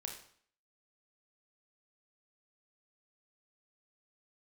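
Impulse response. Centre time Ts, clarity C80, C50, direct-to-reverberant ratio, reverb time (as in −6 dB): 26 ms, 10.0 dB, 6.5 dB, 1.5 dB, 0.55 s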